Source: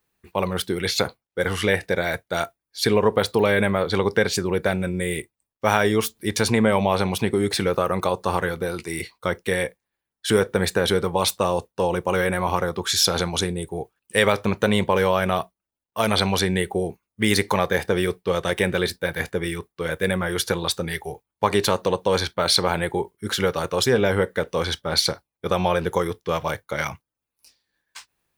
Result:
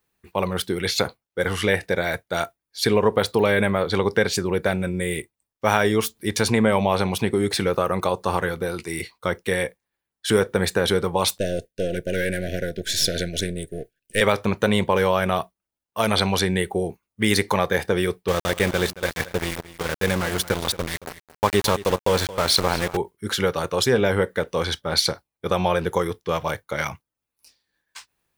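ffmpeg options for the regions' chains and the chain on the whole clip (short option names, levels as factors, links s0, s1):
-filter_complex "[0:a]asettb=1/sr,asplit=3[s0][s1][s2];[s0]atrim=end=11.384[s3];[s1]atrim=start=11.38:end=14.21,asetpts=PTS-STARTPTS,afade=t=in:d=0.004:c=qsin,afade=t=out:st=2.826:d=0.004:c=qsin,aeval=exprs='if(lt(val(0),0),0.447*val(0),val(0))':c=same,asuperstop=centerf=1000:order=20:qfactor=1.3[s4];[s2]atrim=start=14.206[s5];[s3][s4]acrossfade=d=0.004:c1=hsin:c2=qsin[s6];[s6][s5]acrossfade=d=0.004:c1=qsin:c2=hsin,asettb=1/sr,asplit=3[s7][s8][s9];[s7]atrim=end=18.284[s10];[s8]atrim=start=18.28:end=22.97,asetpts=PTS-STARTPTS,afade=t=in:d=0.004:c=qsin,afade=t=out:st=4.686:d=0.004:c=qsin,lowshelf=f=68:g=10.5,aeval=exprs='val(0)*gte(abs(val(0)),0.0668)':c=same,aecho=1:1:225:0.15,atrim=end_sample=206829[s11];[s9]atrim=start=22.966[s12];[s10][s11]acrossfade=d=0.004:c1=hsin:c2=qsin[s13];[s13][s12]acrossfade=d=0.004:c1=qsin:c2=hsin"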